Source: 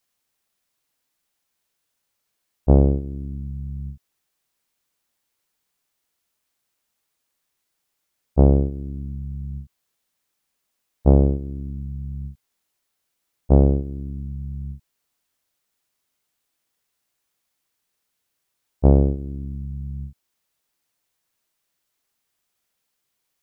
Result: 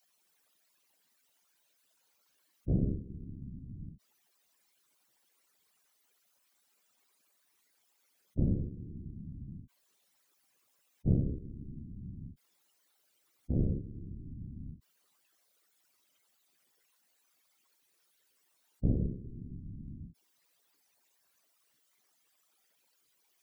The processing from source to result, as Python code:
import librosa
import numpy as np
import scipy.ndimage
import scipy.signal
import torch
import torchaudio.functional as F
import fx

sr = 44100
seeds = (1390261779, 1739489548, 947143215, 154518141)

y = fx.spec_expand(x, sr, power=2.9)
y = scipy.signal.sosfilt(scipy.signal.butter(2, 200.0, 'highpass', fs=sr, output='sos'), y)
y = fx.whisperise(y, sr, seeds[0])
y = y * 10.0 ** (3.5 / 20.0)